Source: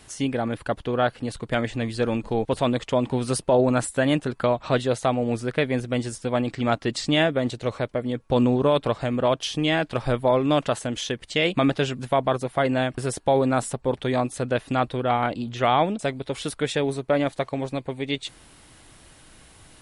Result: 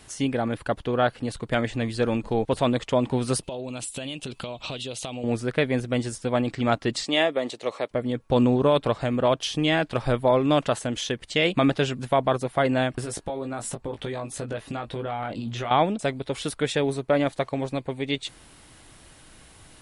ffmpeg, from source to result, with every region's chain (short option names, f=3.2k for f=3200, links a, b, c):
-filter_complex "[0:a]asettb=1/sr,asplit=3[a][b][c];[a]atrim=end=3.434[d];[b]atrim=start=3.43:end=5.24,asetpts=PTS-STARTPTS,afade=t=in:d=0.004:c=qsin,afade=t=out:st=1.806:d=0.004:c=qsin,highshelf=f=2.2k:t=q:w=3:g=7.5,acompressor=threshold=-29dB:ratio=16:attack=3.2:release=140:knee=1:detection=peak[e];[c]atrim=start=5.236[f];[d][e]acrossfade=d=0.004:c1=hsin:c2=qsin[g];[g][f]acrossfade=d=0.004:c1=qsin:c2=hsin,asettb=1/sr,asplit=3[h][i][j];[h]atrim=end=7.034[k];[i]atrim=start=7.03:end=7.91,asetpts=PTS-STARTPTS,afade=t=in:d=0.004:c=qsin,afade=t=out:st=0.876:d=0.004:c=qsin,highpass=360,bandreject=f=1.5k:w=6.8[l];[j]atrim=start=7.906[m];[k][l]acrossfade=d=0.004:c1=hsin:c2=qsin[n];[n][m]acrossfade=d=0.004:c1=qsin:c2=hsin,asettb=1/sr,asplit=3[o][p][q];[o]atrim=end=13.024[r];[p]atrim=start=13.02:end=15.71,asetpts=PTS-STARTPTS,afade=t=in:d=0.004:c=qsin,afade=t=out:st=2.686:d=0.004:c=qsin,acompressor=threshold=-27dB:ratio=12:attack=3.2:release=140:knee=1:detection=peak,asplit=2[s][t];[t]adelay=18,volume=-6dB[u];[s][u]amix=inputs=2:normalize=0,atrim=end_sample=118629[v];[q]atrim=start=15.706[w];[r][v]acrossfade=d=0.004:c1=hsin:c2=qsin[x];[x][w]acrossfade=d=0.004:c1=qsin:c2=hsin"